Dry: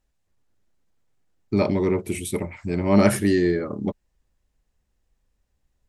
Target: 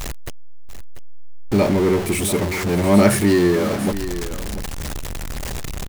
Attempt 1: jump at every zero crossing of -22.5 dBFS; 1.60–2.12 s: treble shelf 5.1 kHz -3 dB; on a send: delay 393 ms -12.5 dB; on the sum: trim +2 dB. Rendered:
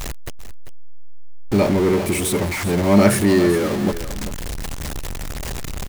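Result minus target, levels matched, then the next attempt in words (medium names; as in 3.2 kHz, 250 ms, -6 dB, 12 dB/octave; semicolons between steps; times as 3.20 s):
echo 297 ms early
jump at every zero crossing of -22.5 dBFS; 1.60–2.12 s: treble shelf 5.1 kHz -3 dB; on a send: delay 690 ms -12.5 dB; on the sum: trim +2 dB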